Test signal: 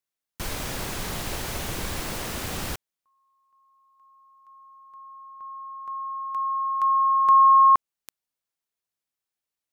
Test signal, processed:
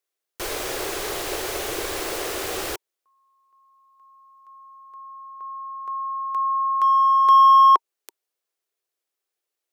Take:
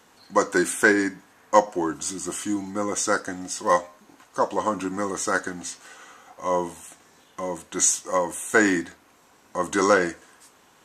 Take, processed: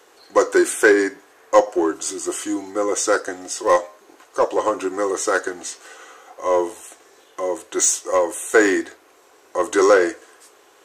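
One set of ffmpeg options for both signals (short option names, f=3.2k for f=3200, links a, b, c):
-filter_complex "[0:a]lowshelf=f=280:t=q:w=3:g=-10.5,bandreject=f=930:w=16,asplit=2[a][b];[b]asoftclip=type=hard:threshold=-18.5dB,volume=-6.5dB[c];[a][c]amix=inputs=2:normalize=0"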